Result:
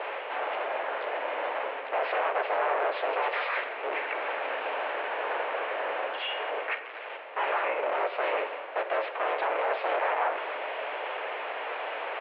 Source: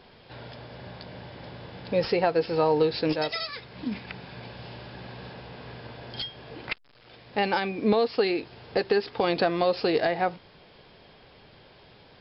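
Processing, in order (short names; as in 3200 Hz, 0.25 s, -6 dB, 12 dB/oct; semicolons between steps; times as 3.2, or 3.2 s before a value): cycle switcher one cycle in 3, inverted; reverse; upward compressor, threshold -25 dBFS; reverse; limiter -22 dBFS, peak gain reduction 10 dB; harmoniser -3 st -1 dB; sine folder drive 8 dB, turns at -15.5 dBFS; mistuned SSB +100 Hz 370–2600 Hz; on a send: reverb RT60 1.5 s, pre-delay 3 ms, DRR 8 dB; on the sum: gain -7 dB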